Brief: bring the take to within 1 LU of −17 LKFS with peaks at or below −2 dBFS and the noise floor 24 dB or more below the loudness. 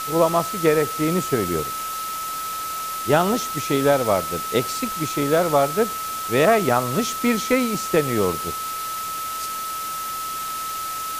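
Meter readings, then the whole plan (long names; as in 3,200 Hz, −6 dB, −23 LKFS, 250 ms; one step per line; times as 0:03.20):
interfering tone 1,300 Hz; level of the tone −27 dBFS; background noise floor −29 dBFS; target noise floor −46 dBFS; integrated loudness −22.0 LKFS; sample peak −3.5 dBFS; target loudness −17.0 LKFS
→ notch filter 1,300 Hz, Q 30
broadband denoise 17 dB, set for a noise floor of −29 dBFS
level +5 dB
brickwall limiter −2 dBFS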